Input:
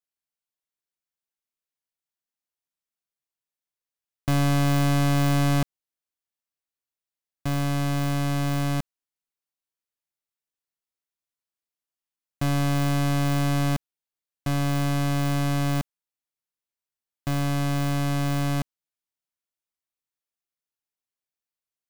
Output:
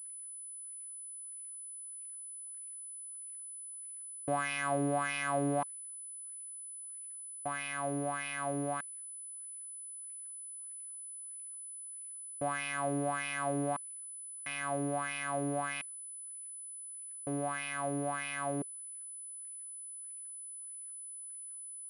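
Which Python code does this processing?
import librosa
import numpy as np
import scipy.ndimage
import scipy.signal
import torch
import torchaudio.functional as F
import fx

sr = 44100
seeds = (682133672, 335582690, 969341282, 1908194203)

y = fx.dmg_crackle(x, sr, seeds[0], per_s=130.0, level_db=-55.0)
y = fx.wah_lfo(y, sr, hz=1.6, low_hz=380.0, high_hz=2500.0, q=4.6)
y = fx.pwm(y, sr, carrier_hz=10000.0)
y = y * 10.0 ** (5.0 / 20.0)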